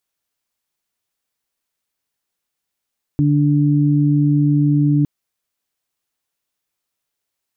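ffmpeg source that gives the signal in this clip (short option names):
-f lavfi -i "aevalsrc='0.211*sin(2*PI*146*t)+0.168*sin(2*PI*292*t)':d=1.86:s=44100"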